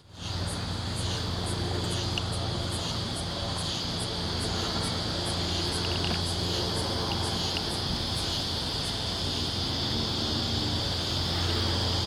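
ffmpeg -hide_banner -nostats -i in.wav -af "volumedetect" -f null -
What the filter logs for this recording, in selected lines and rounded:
mean_volume: -29.9 dB
max_volume: -14.4 dB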